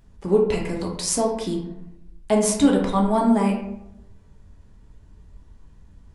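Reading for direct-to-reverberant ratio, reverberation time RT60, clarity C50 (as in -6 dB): -1.0 dB, 0.85 s, 5.0 dB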